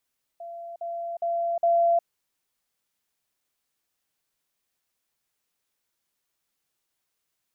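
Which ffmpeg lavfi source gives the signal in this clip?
ffmpeg -f lavfi -i "aevalsrc='pow(10,(-35.5+6*floor(t/0.41))/20)*sin(2*PI*682*t)*clip(min(mod(t,0.41),0.36-mod(t,0.41))/0.005,0,1)':duration=1.64:sample_rate=44100" out.wav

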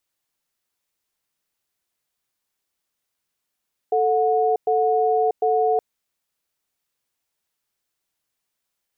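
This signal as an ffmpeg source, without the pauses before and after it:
ffmpeg -f lavfi -i "aevalsrc='0.112*(sin(2*PI*441*t)+sin(2*PI*729*t))*clip(min(mod(t,0.75),0.64-mod(t,0.75))/0.005,0,1)':duration=1.87:sample_rate=44100" out.wav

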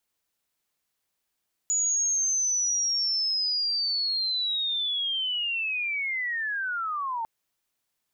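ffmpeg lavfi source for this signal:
ffmpeg -f lavfi -i "aevalsrc='pow(10,(-22-5.5*t/5.55)/20)*sin(2*PI*(6900*t-6020*t*t/(2*5.55)))':duration=5.55:sample_rate=44100" out.wav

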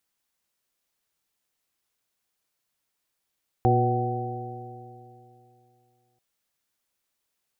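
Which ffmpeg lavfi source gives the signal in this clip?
ffmpeg -f lavfi -i "aevalsrc='0.1*pow(10,-3*t/2.81)*sin(2*PI*119.2*t)+0.0398*pow(10,-3*t/2.81)*sin(2*PI*239.61*t)+0.0708*pow(10,-3*t/2.81)*sin(2*PI*362.42*t)+0.0473*pow(10,-3*t/2.81)*sin(2*PI*488.78*t)+0.0141*pow(10,-3*t/2.81)*sin(2*PI*619.77*t)+0.1*pow(10,-3*t/2.81)*sin(2*PI*756.44*t)':duration=2.54:sample_rate=44100" out.wav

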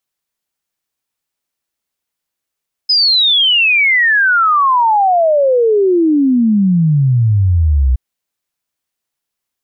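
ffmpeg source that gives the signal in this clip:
ffmpeg -f lavfi -i "aevalsrc='0.398*clip(min(t,5.07-t)/0.01,0,1)*sin(2*PI*5100*5.07/log(61/5100)*(exp(log(61/5100)*t/5.07)-1))':duration=5.07:sample_rate=44100" out.wav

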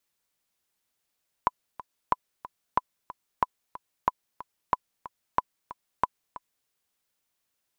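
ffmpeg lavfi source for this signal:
ffmpeg -f lavfi -i "aevalsrc='pow(10,(-8-17*gte(mod(t,2*60/184),60/184))/20)*sin(2*PI*1000*mod(t,60/184))*exp(-6.91*mod(t,60/184)/0.03)':duration=5.21:sample_rate=44100" out.wav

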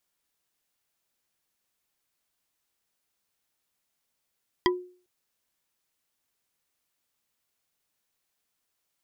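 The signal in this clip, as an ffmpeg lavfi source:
ffmpeg -f lavfi -i "aevalsrc='0.126*pow(10,-3*t/0.43)*sin(2*PI*361*t)+0.112*pow(10,-3*t/0.127)*sin(2*PI*995.3*t)+0.1*pow(10,-3*t/0.057)*sin(2*PI*1950.8*t)+0.0891*pow(10,-3*t/0.031)*sin(2*PI*3224.8*t)+0.0794*pow(10,-3*t/0.019)*sin(2*PI*4815.7*t)':duration=0.4:sample_rate=44100" out.wav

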